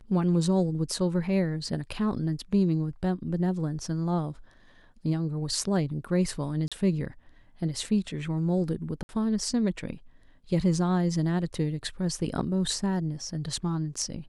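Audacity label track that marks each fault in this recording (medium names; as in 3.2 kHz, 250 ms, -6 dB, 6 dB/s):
6.680000	6.720000	dropout 36 ms
9.030000	9.090000	dropout 61 ms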